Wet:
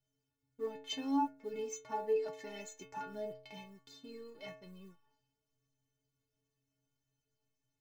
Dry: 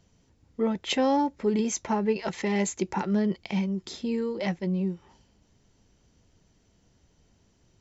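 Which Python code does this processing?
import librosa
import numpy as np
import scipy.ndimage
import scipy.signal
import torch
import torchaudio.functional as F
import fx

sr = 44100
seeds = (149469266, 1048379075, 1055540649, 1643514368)

y = fx.law_mismatch(x, sr, coded='A')
y = fx.stiff_resonator(y, sr, f0_hz=130.0, decay_s=0.73, stiffness=0.03)
y = F.gain(torch.from_numpy(y), 2.0).numpy()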